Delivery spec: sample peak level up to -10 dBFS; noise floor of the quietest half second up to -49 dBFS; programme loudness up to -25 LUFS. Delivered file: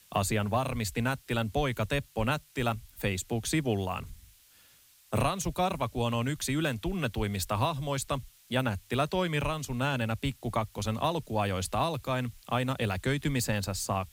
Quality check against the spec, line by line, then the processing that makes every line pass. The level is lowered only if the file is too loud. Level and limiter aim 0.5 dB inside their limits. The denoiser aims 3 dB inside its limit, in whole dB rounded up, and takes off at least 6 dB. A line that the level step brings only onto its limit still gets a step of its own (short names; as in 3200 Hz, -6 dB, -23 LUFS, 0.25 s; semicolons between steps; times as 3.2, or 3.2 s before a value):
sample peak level -16.0 dBFS: OK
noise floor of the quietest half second -60 dBFS: OK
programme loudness -31.0 LUFS: OK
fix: none